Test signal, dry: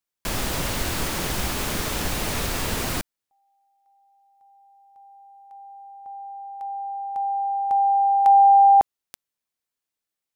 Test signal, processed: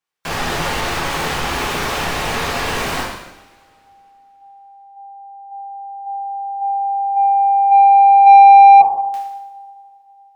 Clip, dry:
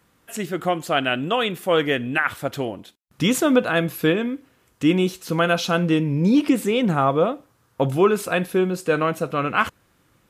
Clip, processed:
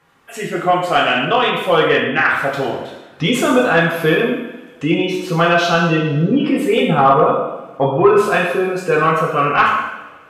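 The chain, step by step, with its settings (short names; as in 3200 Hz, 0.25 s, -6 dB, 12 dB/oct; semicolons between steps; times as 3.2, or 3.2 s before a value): spectral gate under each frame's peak -30 dB strong; two-slope reverb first 0.87 s, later 2.9 s, from -24 dB, DRR -4.5 dB; overdrive pedal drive 11 dB, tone 2000 Hz, clips at 0 dBFS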